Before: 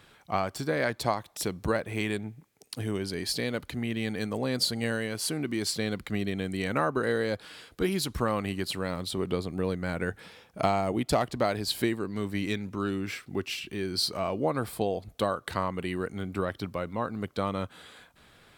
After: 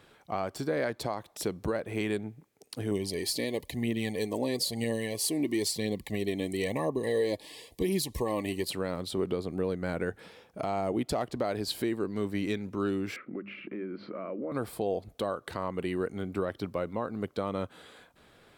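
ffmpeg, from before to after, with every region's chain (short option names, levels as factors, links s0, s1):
-filter_complex "[0:a]asettb=1/sr,asplit=3[s0][s1][s2];[s0]atrim=end=2.914[s3];[s1]atrim=start=2.91:end=8.7,asetpts=PTS-STARTPTS,afade=t=in:d=0.004:c=qsin,afade=t=out:st=5.786:d=0.004:c=qsin,aemphasis=mode=production:type=cd,aphaser=in_gain=1:out_gain=1:delay=3.6:decay=0.4:speed=1:type=triangular,asuperstop=centerf=1400:order=20:qfactor=2.5[s4];[s2]atrim=start=8.696[s5];[s3][s4]acrossfade=d=0.004:c1=hsin:c2=qsin[s6];[s6][s5]acrossfade=d=0.004:c1=qsin:c2=hsin,asettb=1/sr,asplit=3[s7][s8][s9];[s7]atrim=end=13.164[s10];[s8]atrim=start=13.16:end=14.52,asetpts=PTS-STARTPTS,afade=t=in:d=0.004:c=qsin,afade=t=out:st=1.356:d=0.004:c=qsin,highpass=f=140:w=0.5412,highpass=f=140:w=1.3066,equalizer=f=210:t=q:w=4:g=9,equalizer=f=310:t=q:w=4:g=8,equalizer=f=550:t=q:w=4:g=8,equalizer=f=800:t=q:w=4:g=-9,equalizer=f=1300:t=q:w=4:g=9,equalizer=f=2200:t=q:w=4:g=8,lowpass=f=2200:w=0.5412,lowpass=f=2200:w=1.3066,bandreject=f=50:t=h:w=6,bandreject=f=100:t=h:w=6,bandreject=f=150:t=h:w=6,bandreject=f=200:t=h:w=6,acompressor=threshold=0.0158:ratio=4:attack=3.2:release=140:knee=1:detection=peak[s11];[s9]atrim=start=14.516[s12];[s10][s11]acrossfade=d=0.004:c1=hsin:c2=qsin[s13];[s13][s12]acrossfade=d=0.004:c1=qsin:c2=hsin,equalizer=f=430:w=0.67:g=6.5,alimiter=limit=0.168:level=0:latency=1:release=148,volume=0.631"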